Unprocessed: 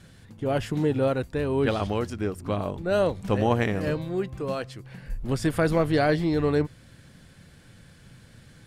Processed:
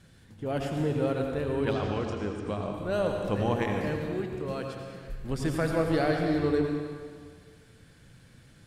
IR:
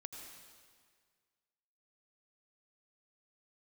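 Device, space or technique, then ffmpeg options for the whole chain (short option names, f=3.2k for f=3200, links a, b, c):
stairwell: -filter_complex "[1:a]atrim=start_sample=2205[a];[0:a][a]afir=irnorm=-1:irlink=0,asettb=1/sr,asplit=3[b][c][d];[b]atrim=end=1.734[e];[c]atrim=start=1.73:end=2.74,asetpts=PTS-STARTPTS,afade=t=in:d=0.004:c=qsin,afade=t=out:st=1.006:d=0.004:c=qsin,lowpass=f=7.7k:w=0.5412,lowpass=f=7.7k:w=1.3066[f];[d]atrim=start=2.736[g];[e][f]acrossfade=d=0.004:c1=hsin:c2=qsin[h];[h][g]acrossfade=d=0.004:c1=qsin:c2=hsin"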